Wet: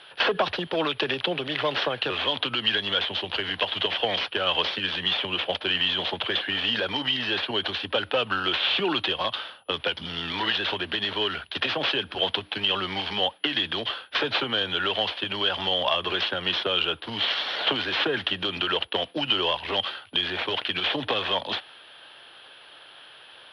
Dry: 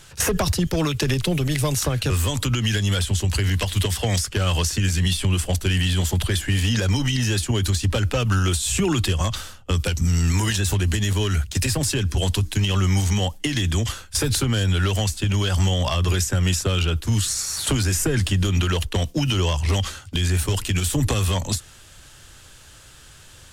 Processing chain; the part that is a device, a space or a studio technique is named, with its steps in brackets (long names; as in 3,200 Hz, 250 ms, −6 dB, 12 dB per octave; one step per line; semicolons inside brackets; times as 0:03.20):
toy sound module (linearly interpolated sample-rate reduction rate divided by 4×; switching amplifier with a slow clock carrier 9,900 Hz; loudspeaker in its box 520–4,000 Hz, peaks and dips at 1,200 Hz −3 dB, 2,100 Hz −6 dB, 3,200 Hz +6 dB)
level +3.5 dB